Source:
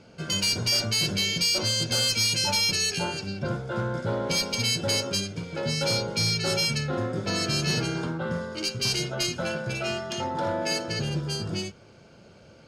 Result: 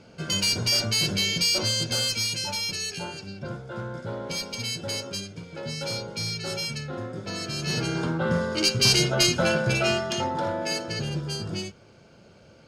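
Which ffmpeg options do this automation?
-af "volume=4.73,afade=t=out:st=1.59:d=0.9:silence=0.473151,afade=t=in:st=7.56:d=0.97:silence=0.237137,afade=t=out:st=9.74:d=0.78:silence=0.398107"

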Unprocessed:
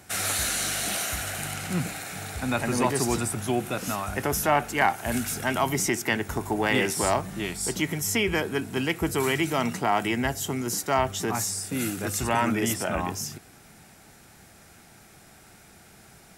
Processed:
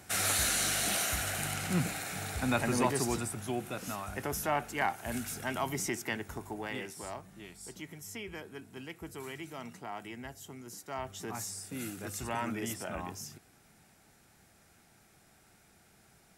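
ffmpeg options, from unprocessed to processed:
-af "volume=1.68,afade=t=out:st=2.44:d=0.9:silence=0.473151,afade=t=out:st=5.95:d=0.97:silence=0.354813,afade=t=in:st=10.8:d=0.63:silence=0.446684"

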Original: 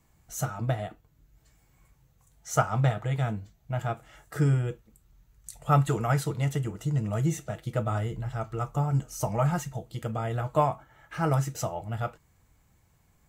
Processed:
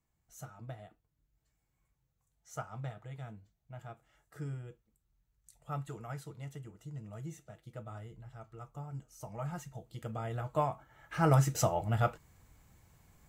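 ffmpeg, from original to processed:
-af "volume=1.26,afade=t=in:st=9.23:d=0.98:silence=0.334965,afade=t=in:st=10.71:d=0.9:silence=0.334965"

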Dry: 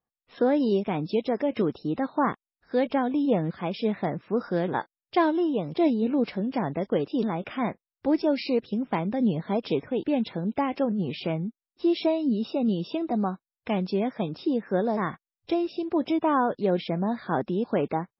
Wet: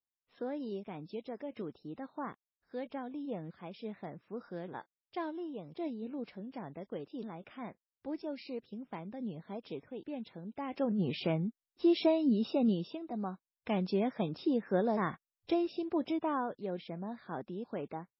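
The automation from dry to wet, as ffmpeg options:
-af "volume=2.11,afade=t=in:st=10.58:d=0.45:silence=0.237137,afade=t=out:st=12.65:d=0.35:silence=0.266073,afade=t=in:st=13:d=0.86:silence=0.316228,afade=t=out:st=15.59:d=1.02:silence=0.354813"

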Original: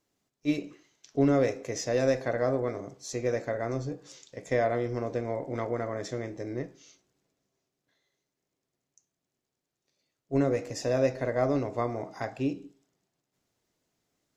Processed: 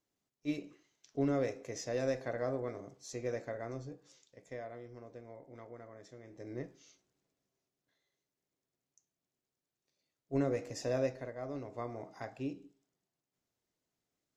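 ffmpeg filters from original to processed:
-af "volume=3.76,afade=t=out:st=3.34:d=1.31:silence=0.298538,afade=t=in:st=6.23:d=0.41:silence=0.237137,afade=t=out:st=10.96:d=0.4:silence=0.298538,afade=t=in:st=11.36:d=0.64:silence=0.421697"

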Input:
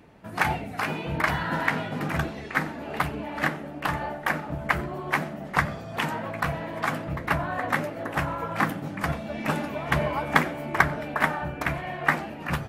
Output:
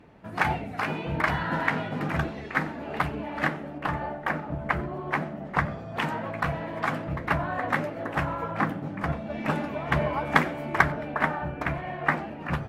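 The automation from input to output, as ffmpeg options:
-af "asetnsamples=n=441:p=0,asendcmd='3.78 lowpass f 1600;5.96 lowpass f 3300;8.51 lowpass f 1500;9.3 lowpass f 2700;10.25 lowpass f 5000;10.92 lowpass f 1900',lowpass=f=3400:p=1"

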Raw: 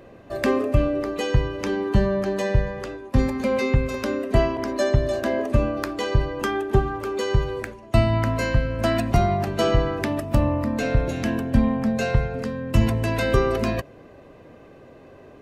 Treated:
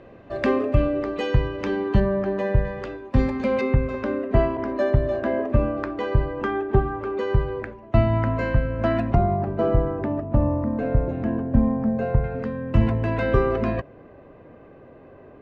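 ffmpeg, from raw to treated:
-af "asetnsamples=n=441:p=0,asendcmd='2 lowpass f 1900;2.65 lowpass f 3500;3.61 lowpass f 1900;9.15 lowpass f 1000;12.24 lowpass f 2000',lowpass=3400"

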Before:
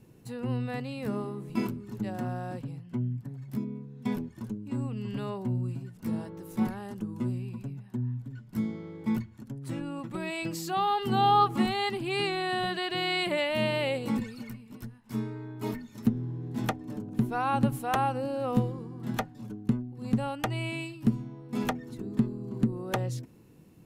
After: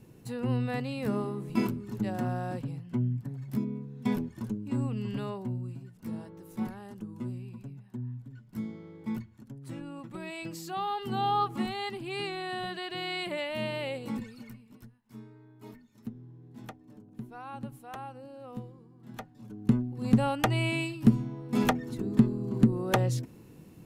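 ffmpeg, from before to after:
-af "volume=11.2,afade=t=out:st=4.94:d=0.66:silence=0.421697,afade=t=out:st=14.59:d=0.44:silence=0.354813,afade=t=in:st=19.08:d=0.44:silence=0.334965,afade=t=in:st=19.52:d=0.25:silence=0.334965"

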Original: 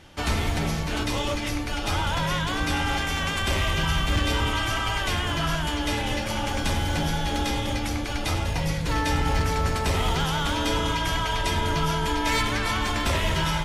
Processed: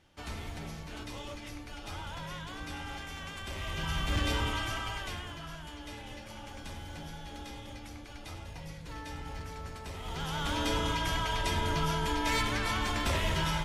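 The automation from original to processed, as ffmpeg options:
-af "volume=2,afade=t=in:st=3.55:d=0.71:silence=0.334965,afade=t=out:st=4.26:d=1.14:silence=0.251189,afade=t=in:st=10.02:d=0.56:silence=0.251189"

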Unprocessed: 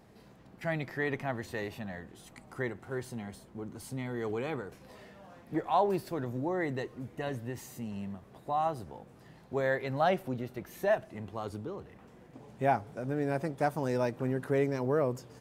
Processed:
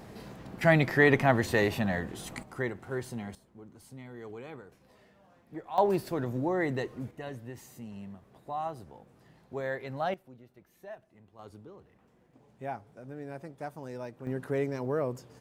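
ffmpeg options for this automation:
-af "asetnsamples=n=441:p=0,asendcmd='2.43 volume volume 2dB;3.35 volume volume -9dB;5.78 volume volume 3dB;7.11 volume volume -4.5dB;10.14 volume volume -17dB;11.39 volume volume -10dB;14.27 volume volume -2dB',volume=3.55"

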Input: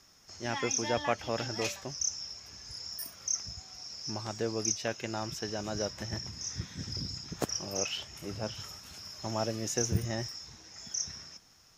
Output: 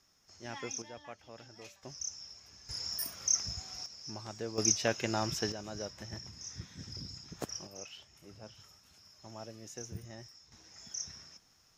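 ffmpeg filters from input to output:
-af "asetnsamples=n=441:p=0,asendcmd='0.82 volume volume -18dB;1.83 volume volume -7.5dB;2.69 volume volume 3dB;3.86 volume volume -6.5dB;4.58 volume volume 3dB;5.52 volume volume -7dB;7.67 volume volume -14dB;10.52 volume volume -5.5dB',volume=0.355"

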